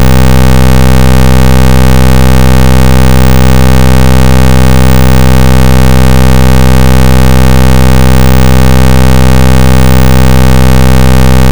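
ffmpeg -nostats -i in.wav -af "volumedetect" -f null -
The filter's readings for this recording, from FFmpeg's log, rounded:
mean_volume: -1.3 dB
max_volume: -1.3 dB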